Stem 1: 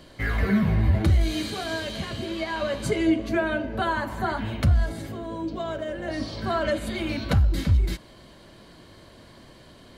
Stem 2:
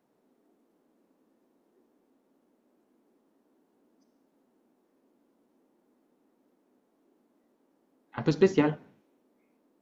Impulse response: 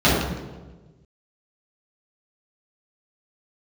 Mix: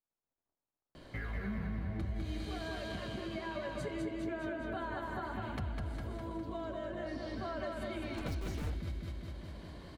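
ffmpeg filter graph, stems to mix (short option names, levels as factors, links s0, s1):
-filter_complex "[0:a]highshelf=f=3600:g=-8,acompressor=threshold=0.0447:ratio=2,adelay=950,volume=0.668,asplit=2[s0][s1];[s1]volume=0.708[s2];[1:a]equalizer=f=120:t=o:w=1.9:g=-12.5,asoftclip=type=hard:threshold=0.0282,aeval=exprs='0.0316*(cos(1*acos(clip(val(0)/0.0316,-1,1)))-cos(1*PI/2))+0.00112*(cos(3*acos(clip(val(0)/0.0316,-1,1)))-cos(3*PI/2))+0.00447*(cos(5*acos(clip(val(0)/0.0316,-1,1)))-cos(5*PI/2))+0.00708*(cos(7*acos(clip(val(0)/0.0316,-1,1)))-cos(7*PI/2))+0.00631*(cos(8*acos(clip(val(0)/0.0316,-1,1)))-cos(8*PI/2))':c=same,volume=0.841[s3];[s2]aecho=0:1:203|406|609|812|1015|1218|1421|1624|1827:1|0.57|0.325|0.185|0.106|0.0602|0.0343|0.0195|0.0111[s4];[s0][s3][s4]amix=inputs=3:normalize=0,acompressor=threshold=0.00708:ratio=2"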